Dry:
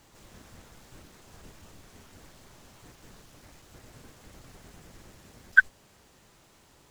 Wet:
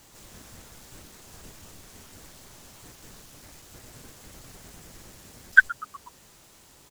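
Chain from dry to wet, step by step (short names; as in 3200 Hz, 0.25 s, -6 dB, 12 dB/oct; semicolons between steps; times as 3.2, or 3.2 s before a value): high shelf 4700 Hz +9 dB; frequency-shifting echo 0.122 s, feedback 57%, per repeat -140 Hz, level -20.5 dB; gain +2 dB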